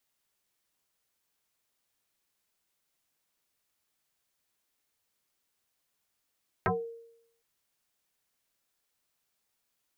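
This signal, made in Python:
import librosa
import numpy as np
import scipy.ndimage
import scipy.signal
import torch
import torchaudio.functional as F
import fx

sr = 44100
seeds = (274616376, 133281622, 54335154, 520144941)

y = fx.fm2(sr, length_s=0.76, level_db=-22, carrier_hz=462.0, ratio=0.61, index=5.8, index_s=0.24, decay_s=0.78, shape='exponential')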